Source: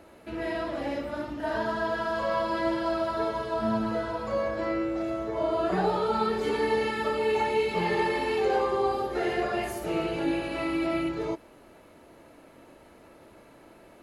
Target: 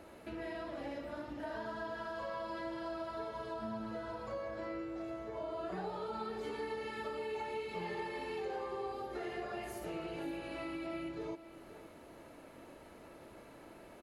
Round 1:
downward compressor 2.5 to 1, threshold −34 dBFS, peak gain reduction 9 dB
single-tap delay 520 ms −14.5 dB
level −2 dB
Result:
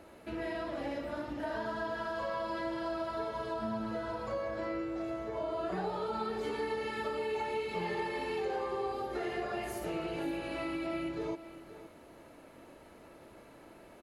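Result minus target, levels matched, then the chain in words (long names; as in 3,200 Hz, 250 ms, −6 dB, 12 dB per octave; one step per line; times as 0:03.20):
downward compressor: peak gain reduction −5 dB
downward compressor 2.5 to 1, threshold −42.5 dBFS, peak gain reduction 14 dB
single-tap delay 520 ms −14.5 dB
level −2 dB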